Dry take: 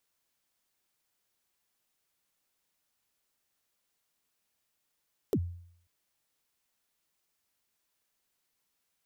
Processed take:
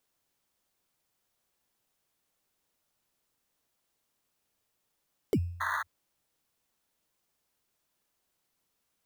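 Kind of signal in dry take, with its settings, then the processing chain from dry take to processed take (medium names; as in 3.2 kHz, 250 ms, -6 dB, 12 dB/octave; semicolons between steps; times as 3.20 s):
kick drum length 0.54 s, from 490 Hz, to 87 Hz, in 61 ms, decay 0.64 s, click on, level -22 dB
painted sound noise, 5.60–5.83 s, 880–2000 Hz -32 dBFS; in parallel at -10.5 dB: sample-rate reducer 2.6 kHz, jitter 0%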